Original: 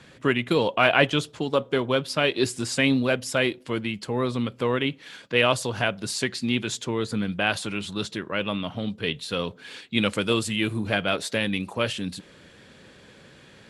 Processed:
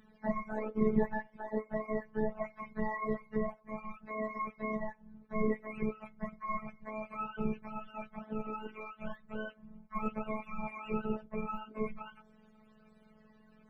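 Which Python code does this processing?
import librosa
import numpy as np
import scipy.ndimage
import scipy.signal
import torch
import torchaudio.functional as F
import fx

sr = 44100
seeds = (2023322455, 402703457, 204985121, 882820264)

y = fx.octave_mirror(x, sr, pivot_hz=510.0)
y = fx.robotise(y, sr, hz=216.0)
y = y * 10.0 ** (-8.0 / 20.0)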